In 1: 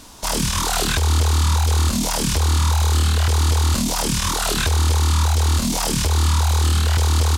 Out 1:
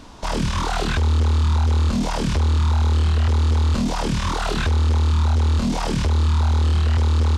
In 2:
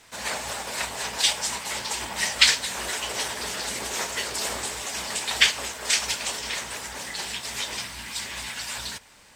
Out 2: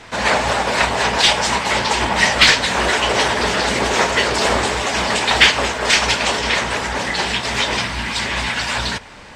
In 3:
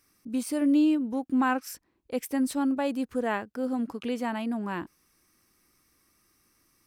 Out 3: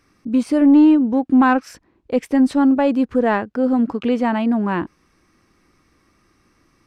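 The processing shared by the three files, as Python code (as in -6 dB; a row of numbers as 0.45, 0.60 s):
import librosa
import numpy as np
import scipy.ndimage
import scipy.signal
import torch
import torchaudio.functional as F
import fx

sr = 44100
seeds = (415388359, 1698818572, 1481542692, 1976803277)

y = 10.0 ** (-17.0 / 20.0) * np.tanh(x / 10.0 ** (-17.0 / 20.0))
y = fx.spacing_loss(y, sr, db_at_10k=20)
y = y * 10.0 ** (-18 / 20.0) / np.sqrt(np.mean(np.square(y)))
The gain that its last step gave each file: +3.5, +18.5, +13.5 dB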